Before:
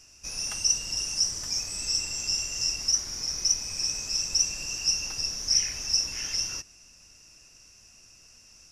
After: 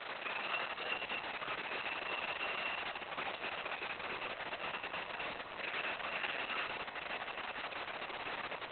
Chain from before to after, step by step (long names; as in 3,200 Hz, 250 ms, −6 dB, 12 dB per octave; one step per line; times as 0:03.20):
0:03.94–0:05.48: parametric band 2,100 Hz −10 dB 2.2 octaves
downward compressor 3 to 1, threshold −39 dBFS, peak gain reduction 15.5 dB
chorus effect 0.58 Hz, delay 15.5 ms, depth 5.8 ms
0:00.84–0:01.51: floating-point word with a short mantissa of 2 bits
background noise pink −52 dBFS
band-pass filter 560–3,000 Hz
feedback delay with all-pass diffusion 1,010 ms, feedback 53%, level −8 dB
convolution reverb RT60 0.85 s, pre-delay 3 ms, DRR −1 dB
level +12 dB
Opus 6 kbit/s 48,000 Hz